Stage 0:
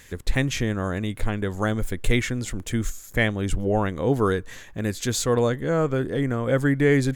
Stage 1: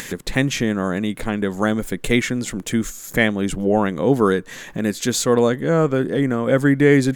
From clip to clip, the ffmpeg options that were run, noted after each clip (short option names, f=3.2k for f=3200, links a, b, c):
-af "lowshelf=f=120:t=q:w=1.5:g=-11.5,acompressor=mode=upward:threshold=-27dB:ratio=2.5,volume=4.5dB"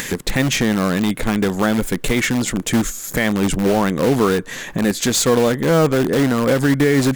-filter_complex "[0:a]asplit=2[a][b];[b]aeval=exprs='(mod(7.08*val(0)+1,2)-1)/7.08':c=same,volume=-8dB[c];[a][c]amix=inputs=2:normalize=0,alimiter=limit=-9dB:level=0:latency=1:release=79,volume=3dB"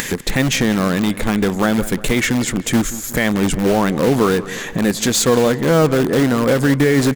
-filter_complex "[0:a]acompressor=mode=upward:threshold=-23dB:ratio=2.5,asplit=2[a][b];[b]adelay=181,lowpass=f=3.6k:p=1,volume=-16dB,asplit=2[c][d];[d]adelay=181,lowpass=f=3.6k:p=1,volume=0.51,asplit=2[e][f];[f]adelay=181,lowpass=f=3.6k:p=1,volume=0.51,asplit=2[g][h];[h]adelay=181,lowpass=f=3.6k:p=1,volume=0.51,asplit=2[i][j];[j]adelay=181,lowpass=f=3.6k:p=1,volume=0.51[k];[a][c][e][g][i][k]amix=inputs=6:normalize=0,volume=1dB"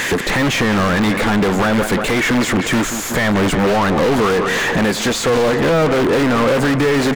-filter_complex "[0:a]alimiter=limit=-11.5dB:level=0:latency=1:release=208,asplit=2[a][b];[b]highpass=f=720:p=1,volume=29dB,asoftclip=type=tanh:threshold=-11.5dB[c];[a][c]amix=inputs=2:normalize=0,lowpass=f=2k:p=1,volume=-6dB,volume=3dB"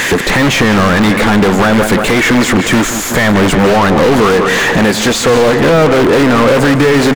-af "aecho=1:1:153:0.178,volume=6dB"